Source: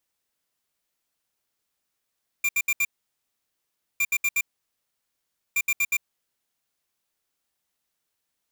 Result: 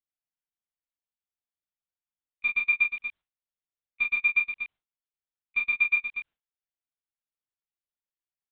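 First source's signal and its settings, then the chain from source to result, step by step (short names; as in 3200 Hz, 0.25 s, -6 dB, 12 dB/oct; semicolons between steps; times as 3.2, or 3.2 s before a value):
beep pattern square 2380 Hz, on 0.05 s, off 0.07 s, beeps 4, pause 1.15 s, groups 3, -22.5 dBFS
on a send: loudspeakers at several distances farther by 11 m -7 dB, 82 m -7 dB; on the sum: monotone LPC vocoder at 8 kHz 240 Hz; gate with hold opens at -55 dBFS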